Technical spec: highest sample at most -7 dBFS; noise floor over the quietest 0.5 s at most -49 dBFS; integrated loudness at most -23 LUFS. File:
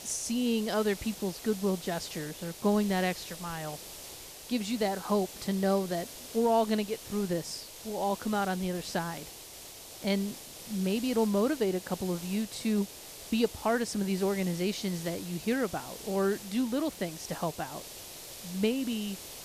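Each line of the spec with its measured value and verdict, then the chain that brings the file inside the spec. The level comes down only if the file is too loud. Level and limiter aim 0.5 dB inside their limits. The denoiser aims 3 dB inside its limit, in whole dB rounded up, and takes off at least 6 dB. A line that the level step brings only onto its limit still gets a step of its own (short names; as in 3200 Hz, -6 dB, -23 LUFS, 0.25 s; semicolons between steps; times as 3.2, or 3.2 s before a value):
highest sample -14.5 dBFS: OK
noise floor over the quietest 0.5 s -47 dBFS: fail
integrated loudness -31.5 LUFS: OK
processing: denoiser 6 dB, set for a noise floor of -47 dBFS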